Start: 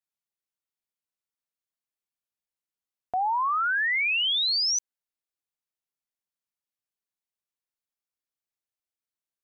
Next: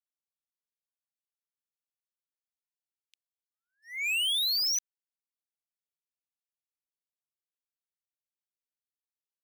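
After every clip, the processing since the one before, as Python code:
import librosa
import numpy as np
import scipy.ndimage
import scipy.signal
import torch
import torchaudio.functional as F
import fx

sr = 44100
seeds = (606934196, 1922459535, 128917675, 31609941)

y = scipy.signal.sosfilt(scipy.signal.butter(12, 2500.0, 'highpass', fs=sr, output='sos'), x)
y = fx.leveller(y, sr, passes=3)
y = y * librosa.db_to_amplitude(-5.0)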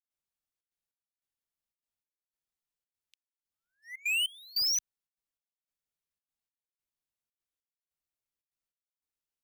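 y = fx.low_shelf(x, sr, hz=130.0, db=11.5)
y = fx.step_gate(y, sr, bpm=148, pattern='.xxxxx.xx..', floor_db=-24.0, edge_ms=4.5)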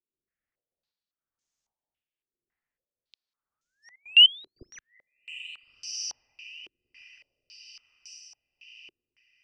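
y = fx.echo_diffused(x, sr, ms=1376, feedback_pct=50, wet_db=-14.5)
y = fx.rotary(y, sr, hz=1.1)
y = fx.filter_held_lowpass(y, sr, hz=3.6, low_hz=370.0, high_hz=6500.0)
y = y * librosa.db_to_amplitude(5.0)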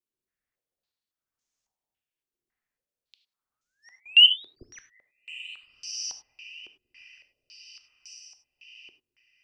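y = fx.rev_gated(x, sr, seeds[0], gate_ms=120, shape='flat', drr_db=9.0)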